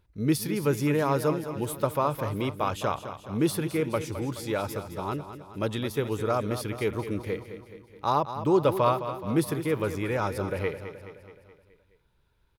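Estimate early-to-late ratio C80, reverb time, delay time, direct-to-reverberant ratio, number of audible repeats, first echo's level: no reverb, no reverb, 212 ms, no reverb, 5, -11.0 dB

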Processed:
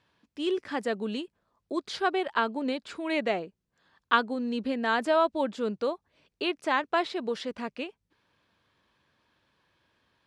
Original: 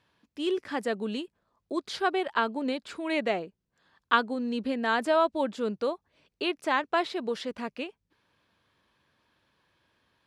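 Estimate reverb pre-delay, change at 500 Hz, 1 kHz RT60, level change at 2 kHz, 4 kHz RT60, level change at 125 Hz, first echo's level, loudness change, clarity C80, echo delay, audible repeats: no reverb, 0.0 dB, no reverb, 0.0 dB, no reverb, no reading, no echo, 0.0 dB, no reverb, no echo, no echo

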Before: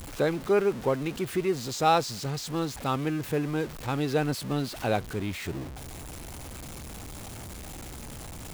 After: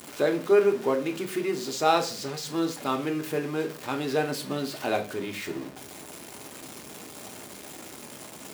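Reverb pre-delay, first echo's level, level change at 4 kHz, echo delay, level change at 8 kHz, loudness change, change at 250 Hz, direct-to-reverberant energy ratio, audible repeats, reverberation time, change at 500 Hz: 3 ms, no echo, +1.5 dB, no echo, +1.0 dB, +1.0 dB, 0.0 dB, 4.0 dB, no echo, 0.40 s, +2.5 dB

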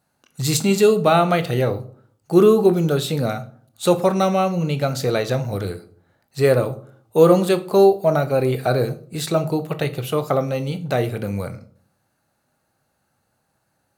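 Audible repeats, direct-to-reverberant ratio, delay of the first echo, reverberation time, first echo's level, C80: no echo, 10.0 dB, no echo, 0.55 s, no echo, 20.5 dB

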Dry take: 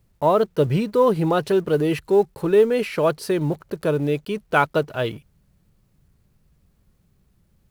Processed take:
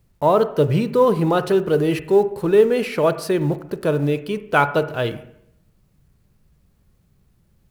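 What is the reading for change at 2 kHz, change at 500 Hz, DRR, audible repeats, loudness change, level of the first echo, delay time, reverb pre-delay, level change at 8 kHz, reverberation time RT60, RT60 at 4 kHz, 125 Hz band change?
+2.0 dB, +2.0 dB, 11.5 dB, no echo, +2.0 dB, no echo, no echo, 30 ms, +1.5 dB, 0.75 s, 0.70 s, +2.5 dB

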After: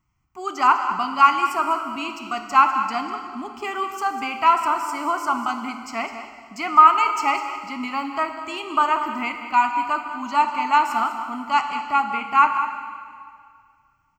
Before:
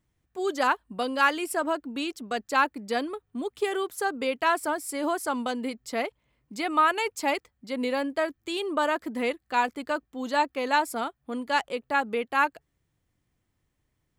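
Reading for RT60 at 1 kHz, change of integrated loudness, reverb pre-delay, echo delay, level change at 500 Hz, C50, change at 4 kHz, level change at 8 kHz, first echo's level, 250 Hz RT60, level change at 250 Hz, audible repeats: 2.1 s, +7.0 dB, 6 ms, 199 ms, -5.0 dB, 6.0 dB, +1.5 dB, -1.0 dB, -12.0 dB, 2.1 s, 0.0 dB, 1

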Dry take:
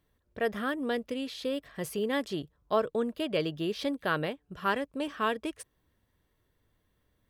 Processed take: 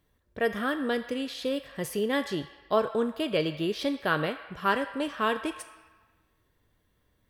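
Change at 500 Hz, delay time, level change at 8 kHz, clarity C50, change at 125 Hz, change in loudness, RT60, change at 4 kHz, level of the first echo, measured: +2.5 dB, no echo, +3.0 dB, 10.5 dB, +2.5 dB, +3.0 dB, 1.4 s, +3.0 dB, no echo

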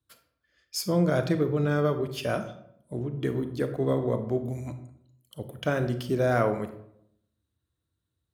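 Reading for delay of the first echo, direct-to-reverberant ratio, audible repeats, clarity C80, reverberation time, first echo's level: no echo, 8.5 dB, no echo, 13.5 dB, 0.70 s, no echo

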